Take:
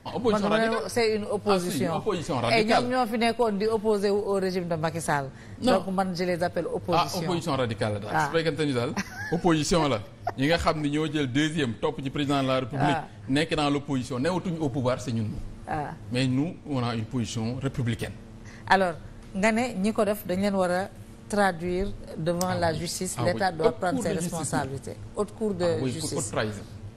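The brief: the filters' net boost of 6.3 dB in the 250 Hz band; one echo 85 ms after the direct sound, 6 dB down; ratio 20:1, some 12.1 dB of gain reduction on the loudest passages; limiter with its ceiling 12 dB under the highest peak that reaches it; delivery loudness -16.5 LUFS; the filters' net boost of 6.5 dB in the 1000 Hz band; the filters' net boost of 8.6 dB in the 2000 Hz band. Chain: bell 250 Hz +7.5 dB; bell 1000 Hz +6.5 dB; bell 2000 Hz +8.5 dB; compressor 20:1, threshold -18 dBFS; limiter -16.5 dBFS; echo 85 ms -6 dB; gain +10 dB

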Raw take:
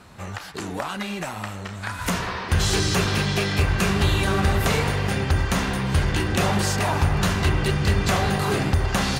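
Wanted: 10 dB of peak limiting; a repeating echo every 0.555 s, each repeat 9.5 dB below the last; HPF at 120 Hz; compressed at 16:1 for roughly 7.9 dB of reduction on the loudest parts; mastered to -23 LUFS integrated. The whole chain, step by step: HPF 120 Hz; compressor 16:1, threshold -26 dBFS; limiter -24 dBFS; feedback echo 0.555 s, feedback 33%, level -9.5 dB; gain +9.5 dB

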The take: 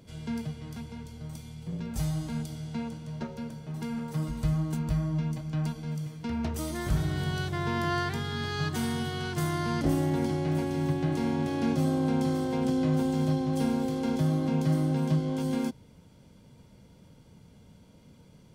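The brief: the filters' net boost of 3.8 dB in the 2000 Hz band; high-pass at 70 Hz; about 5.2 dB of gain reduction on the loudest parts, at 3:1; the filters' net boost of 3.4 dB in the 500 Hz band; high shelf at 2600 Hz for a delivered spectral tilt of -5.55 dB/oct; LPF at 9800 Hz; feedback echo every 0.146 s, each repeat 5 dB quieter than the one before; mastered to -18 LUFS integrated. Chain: HPF 70 Hz; LPF 9800 Hz; bell 500 Hz +4.5 dB; bell 2000 Hz +7.5 dB; high shelf 2600 Hz -7.5 dB; compressor 3:1, threshold -28 dBFS; feedback echo 0.146 s, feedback 56%, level -5 dB; gain +13 dB

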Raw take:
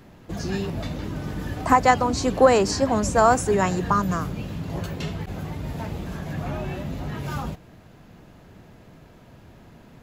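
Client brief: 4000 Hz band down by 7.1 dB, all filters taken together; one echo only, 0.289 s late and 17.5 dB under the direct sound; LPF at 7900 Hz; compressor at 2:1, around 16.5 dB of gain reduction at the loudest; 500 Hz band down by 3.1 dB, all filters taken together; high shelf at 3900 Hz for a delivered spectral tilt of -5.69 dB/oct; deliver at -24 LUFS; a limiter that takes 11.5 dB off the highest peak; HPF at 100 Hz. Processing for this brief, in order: HPF 100 Hz; LPF 7900 Hz; bell 500 Hz -3.5 dB; high shelf 3900 Hz -8 dB; bell 4000 Hz -3.5 dB; compressor 2:1, threshold -45 dBFS; limiter -33.5 dBFS; echo 0.289 s -17.5 dB; gain +19.5 dB

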